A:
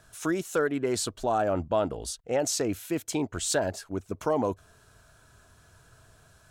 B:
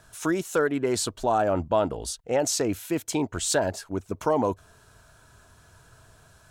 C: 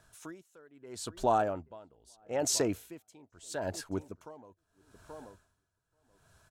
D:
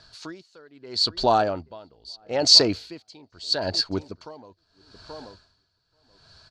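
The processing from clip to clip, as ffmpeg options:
-af "equalizer=f=930:t=o:w=0.23:g=4,volume=2.5dB"
-filter_complex "[0:a]dynaudnorm=f=200:g=7:m=6dB,asplit=2[a][b];[b]adelay=831,lowpass=f=1.7k:p=1,volume=-21dB,asplit=2[c][d];[d]adelay=831,lowpass=f=1.7k:p=1,volume=0.3[e];[a][c][e]amix=inputs=3:normalize=0,aeval=exprs='val(0)*pow(10,-28*(0.5-0.5*cos(2*PI*0.78*n/s))/20)':c=same,volume=-8.5dB"
-af "lowpass=f=4.5k:t=q:w=15,volume=7dB"

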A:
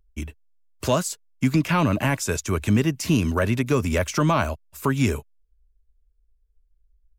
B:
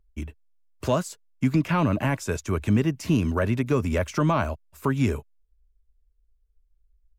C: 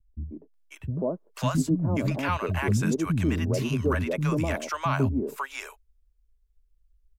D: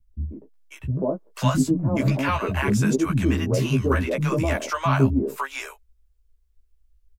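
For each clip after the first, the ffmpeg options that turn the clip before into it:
-af "highshelf=f=2.7k:g=-8.5,volume=-1.5dB"
-filter_complex "[0:a]acrossover=split=210|680[a][b][c];[b]adelay=140[d];[c]adelay=540[e];[a][d][e]amix=inputs=3:normalize=0"
-filter_complex "[0:a]asplit=2[a][b];[b]adelay=15,volume=-3dB[c];[a][c]amix=inputs=2:normalize=0,volume=2.5dB"

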